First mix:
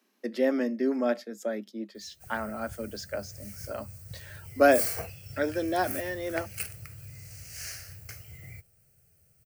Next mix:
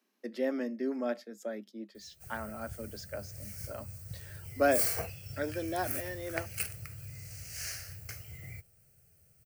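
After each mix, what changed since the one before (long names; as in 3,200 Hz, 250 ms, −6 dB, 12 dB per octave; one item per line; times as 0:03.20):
speech −6.5 dB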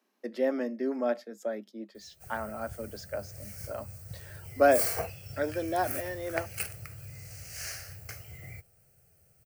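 master: add parametric band 750 Hz +6 dB 1.9 octaves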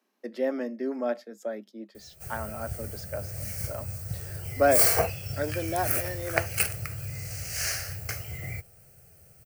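background +9.0 dB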